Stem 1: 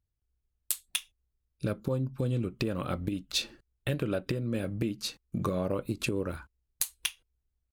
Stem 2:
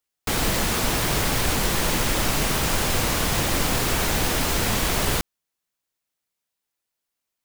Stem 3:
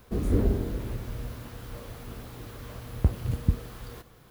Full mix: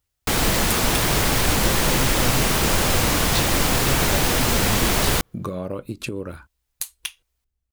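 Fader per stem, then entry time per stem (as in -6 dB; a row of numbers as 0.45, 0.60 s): +1.5, +3.0, -8.5 dB; 0.00, 0.00, 1.15 s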